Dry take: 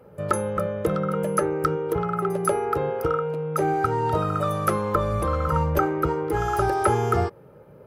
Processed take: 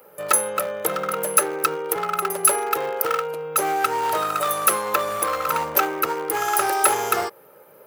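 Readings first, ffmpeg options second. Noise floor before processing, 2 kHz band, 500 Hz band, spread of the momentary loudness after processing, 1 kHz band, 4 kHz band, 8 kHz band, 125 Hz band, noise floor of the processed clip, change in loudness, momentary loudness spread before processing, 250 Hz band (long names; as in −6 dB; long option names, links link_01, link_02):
−49 dBFS, +7.0 dB, −1.5 dB, 6 LU, +3.0 dB, +11.5 dB, +17.0 dB, −17.5 dB, −50 dBFS, +3.0 dB, 4 LU, −7.5 dB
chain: -af "aeval=exprs='clip(val(0),-1,0.0794)':channel_layout=same,highpass=frequency=630:poles=1,aemphasis=mode=production:type=bsi,volume=5.5dB"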